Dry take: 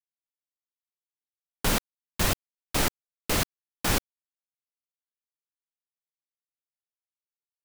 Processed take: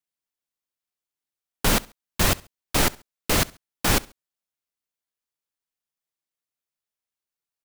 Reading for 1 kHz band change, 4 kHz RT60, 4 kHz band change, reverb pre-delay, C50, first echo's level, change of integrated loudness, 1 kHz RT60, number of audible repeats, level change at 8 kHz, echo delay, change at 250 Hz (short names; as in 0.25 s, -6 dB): +4.5 dB, none, +4.5 dB, none, none, -23.0 dB, +4.5 dB, none, 2, +4.5 dB, 68 ms, +4.5 dB